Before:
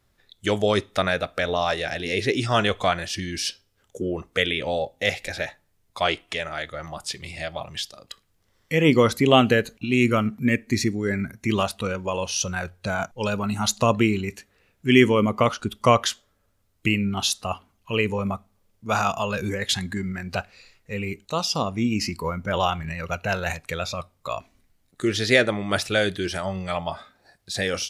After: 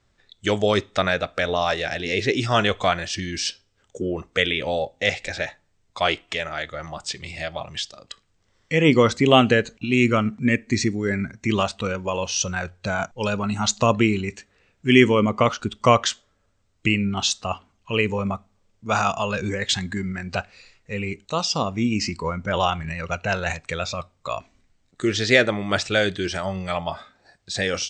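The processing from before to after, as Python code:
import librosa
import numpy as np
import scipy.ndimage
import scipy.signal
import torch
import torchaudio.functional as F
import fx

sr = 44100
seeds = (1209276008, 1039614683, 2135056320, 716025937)

y = scipy.signal.sosfilt(scipy.signal.cheby1(6, 1.0, 8200.0, 'lowpass', fs=sr, output='sos'), x)
y = y * 10.0 ** (2.0 / 20.0)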